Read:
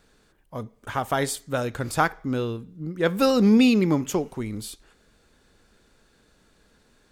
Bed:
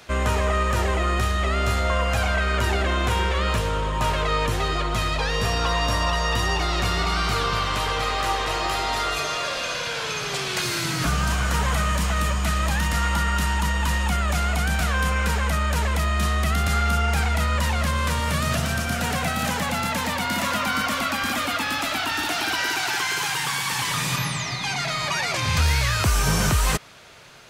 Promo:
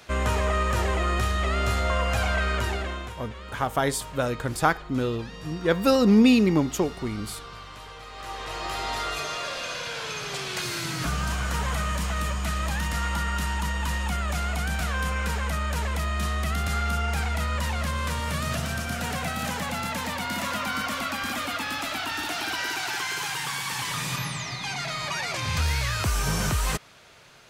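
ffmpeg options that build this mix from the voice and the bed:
-filter_complex "[0:a]adelay=2650,volume=0dB[a];[1:a]volume=10.5dB,afade=t=out:st=2.45:d=0.7:silence=0.16788,afade=t=in:st=8.1:d=0.77:silence=0.223872[b];[a][b]amix=inputs=2:normalize=0"

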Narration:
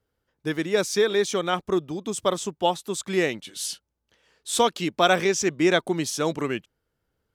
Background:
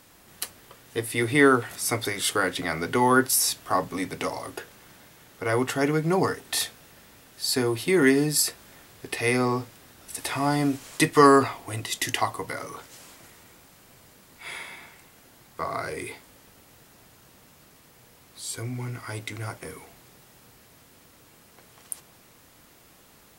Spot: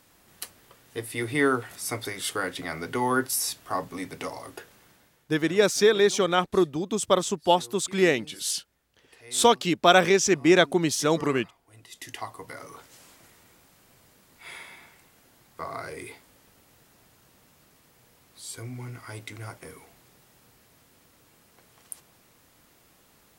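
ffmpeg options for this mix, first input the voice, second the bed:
-filter_complex "[0:a]adelay=4850,volume=2dB[a];[1:a]volume=14.5dB,afade=t=out:st=4.75:d=0.63:silence=0.105925,afade=t=in:st=11.69:d=1.18:silence=0.105925[b];[a][b]amix=inputs=2:normalize=0"

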